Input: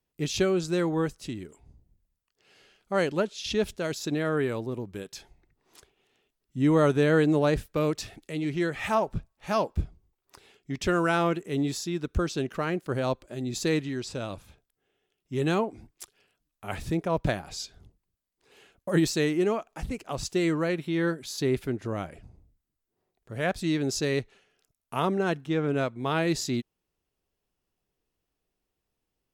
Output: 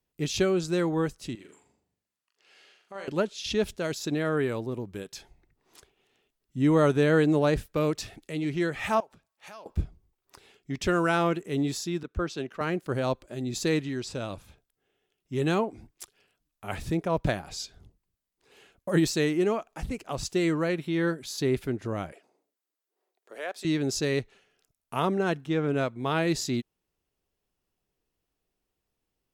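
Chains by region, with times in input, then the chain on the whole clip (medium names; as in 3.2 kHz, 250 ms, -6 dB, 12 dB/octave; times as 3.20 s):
1.35–3.08 s: frequency weighting A + compression 2:1, threshold -48 dBFS + flutter echo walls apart 7 m, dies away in 0.46 s
9.00–9.66 s: compression 8:1, threshold -38 dBFS + high-pass 860 Hz 6 dB/octave
12.03–12.61 s: low-pass 3.8 kHz 6 dB/octave + bass shelf 360 Hz -6.5 dB + three bands expanded up and down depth 70%
22.12–23.65 s: high-pass 370 Hz 24 dB/octave + compression 1.5:1, threshold -41 dBFS
whole clip: none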